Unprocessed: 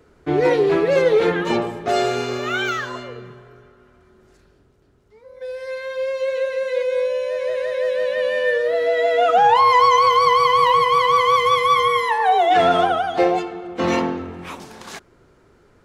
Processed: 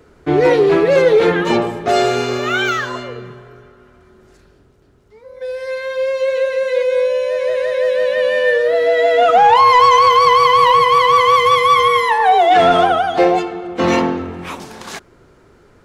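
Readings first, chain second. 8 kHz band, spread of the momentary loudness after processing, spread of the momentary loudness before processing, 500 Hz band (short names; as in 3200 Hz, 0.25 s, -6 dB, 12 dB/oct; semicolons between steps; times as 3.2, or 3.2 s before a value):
n/a, 15 LU, 16 LU, +5.0 dB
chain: soft clip -7 dBFS, distortion -23 dB; gain +5.5 dB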